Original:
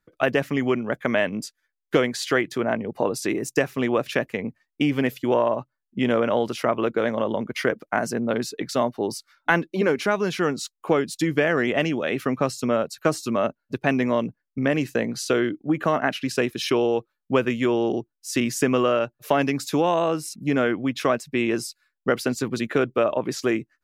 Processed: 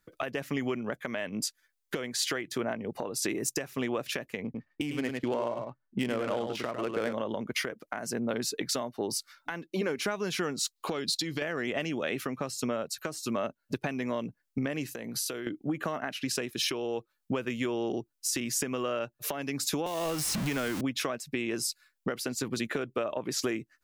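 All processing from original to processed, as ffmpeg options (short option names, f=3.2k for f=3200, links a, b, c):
-filter_complex "[0:a]asettb=1/sr,asplit=3[a][b][c];[a]atrim=end=4.444[d];[b]atrim=start=4.44:end=7.13,asetpts=PTS-STARTPTS,afade=t=in:d=0.004:c=qsin,afade=t=out:st=2.686:d=0.004:c=qsin,adynamicsmooth=sensitivity=5:basefreq=2.1k,aecho=1:1:102:0.447,atrim=end_sample=118629[e];[c]atrim=start=7.126[f];[d][e]acrossfade=d=0.004:c1=hsin:c2=qsin[g];[g][f]acrossfade=d=0.004:c1=qsin:c2=hsin,asettb=1/sr,asplit=3[h][i][j];[h]atrim=end=10.764[k];[i]atrim=start=10.76:end=11.42,asetpts=PTS-STARTPTS,afade=t=in:d=0.004:c=qsin,afade=t=out:st=0.656:d=0.004:c=qsin,equalizer=f=4.2k:t=o:w=0.66:g=14,acompressor=threshold=-31dB:ratio=2.5:attack=3.2:release=140:knee=1:detection=peak[l];[j]atrim=start=11.416[m];[k][l]acrossfade=d=0.004:c1=hsin:c2=qsin[n];[n][m]acrossfade=d=0.004:c1=qsin:c2=hsin,asettb=1/sr,asplit=3[o][p][q];[o]atrim=end=14.914[r];[p]atrim=start=14.91:end=15.47,asetpts=PTS-STARTPTS,afade=t=in:d=0.004:c=qsin,afade=t=out:st=0.556:d=0.004:c=qsin,equalizer=f=12k:w=1.6:g=12,acompressor=threshold=-36dB:ratio=8:attack=3.2:release=140:knee=1:detection=peak,bandreject=f=6.8k:w=23[s];[q]atrim=start=15.466[t];[r][s]acrossfade=d=0.004:c1=hsin:c2=qsin[u];[u][t]acrossfade=d=0.004:c1=qsin:c2=hsin,asettb=1/sr,asplit=3[v][w][x];[v]atrim=end=19.864[y];[w]atrim=start=19.86:end=20.81,asetpts=PTS-STARTPTS,afade=t=in:d=0.004:c=qsin,afade=t=out:st=0.946:d=0.004:c=qsin,aeval=exprs='val(0)+0.5*0.0447*sgn(val(0))':c=same,asubboost=boost=8.5:cutoff=230,acrossover=split=440|3300[z][aa][ab];[z]acompressor=threshold=-30dB:ratio=4[ac];[aa]acompressor=threshold=-27dB:ratio=4[ad];[ab]acompressor=threshold=-38dB:ratio=4[ae];[ac][ad][ae]amix=inputs=3:normalize=0[af];[x]atrim=start=20.806[ag];[y][af]acrossfade=d=0.004:c1=hsin:c2=qsin[ah];[ah][ag]acrossfade=d=0.004:c1=qsin:c2=hsin,acompressor=threshold=-30dB:ratio=6,highshelf=f=3.5k:g=7.5,alimiter=limit=-20dB:level=0:latency=1:release=280,volume=1.5dB"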